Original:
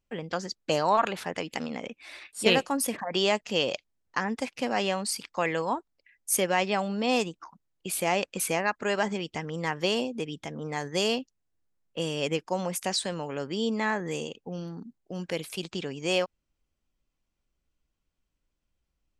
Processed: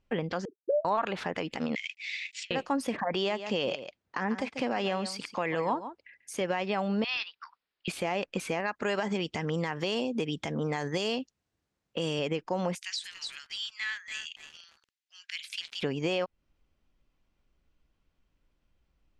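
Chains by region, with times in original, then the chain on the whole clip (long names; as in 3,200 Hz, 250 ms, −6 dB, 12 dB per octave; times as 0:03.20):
0:00.45–0:00.85: three sine waves on the formant tracks + Chebyshev low-pass with heavy ripple 610 Hz, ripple 6 dB
0:01.75–0:02.51: variable-slope delta modulation 64 kbit/s + Chebyshev band-pass filter 2,000–7,500 Hz, order 4 + compressor whose output falls as the input rises −41 dBFS, ratio −0.5
0:03.14–0:06.41: high-pass filter 62 Hz + single-tap delay 140 ms −15.5 dB
0:07.04–0:07.88: high-pass filter 1,400 Hz 24 dB per octave + bad sample-rate conversion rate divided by 4×, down none, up filtered
0:08.60–0:12.19: high-shelf EQ 5,700 Hz +11 dB + downward compressor 1.5 to 1, threshold −30 dBFS + high-pass filter 48 Hz
0:12.75–0:15.83: Bessel high-pass filter 2,800 Hz, order 6 + feedback echo at a low word length 285 ms, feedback 35%, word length 8 bits, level −8.5 dB
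whole clip: downward compressor 2.5 to 1, threshold −35 dBFS; brickwall limiter −25.5 dBFS; Bessel low-pass filter 3,500 Hz, order 2; level +7.5 dB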